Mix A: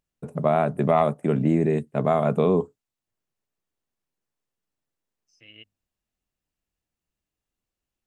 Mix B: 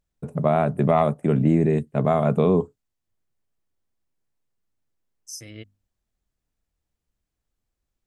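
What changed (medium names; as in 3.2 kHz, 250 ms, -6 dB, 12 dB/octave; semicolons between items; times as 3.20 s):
second voice: remove four-pole ladder low-pass 2.9 kHz, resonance 85%; master: add bass shelf 110 Hz +11 dB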